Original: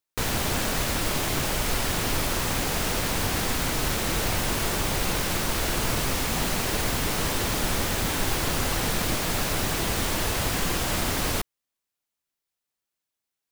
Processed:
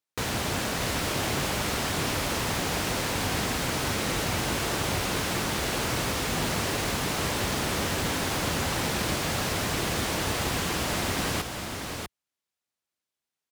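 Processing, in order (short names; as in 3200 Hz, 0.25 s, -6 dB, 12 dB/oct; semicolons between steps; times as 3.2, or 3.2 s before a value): HPF 66 Hz; high shelf 12000 Hz -10 dB; echo 0.644 s -5.5 dB; gain -1.5 dB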